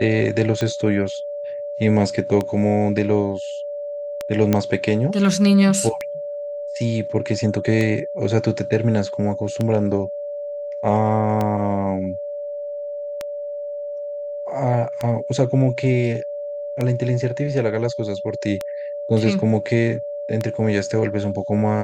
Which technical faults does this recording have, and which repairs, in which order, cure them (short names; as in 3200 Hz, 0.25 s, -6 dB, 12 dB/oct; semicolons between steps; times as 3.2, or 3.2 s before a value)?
tick 33 1/3 rpm -10 dBFS
tone 580 Hz -26 dBFS
4.53 pop -5 dBFS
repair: de-click; notch 580 Hz, Q 30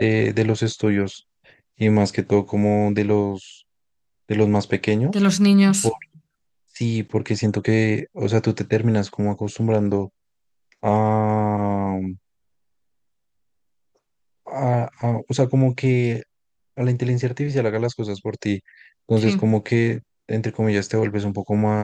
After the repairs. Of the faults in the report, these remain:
none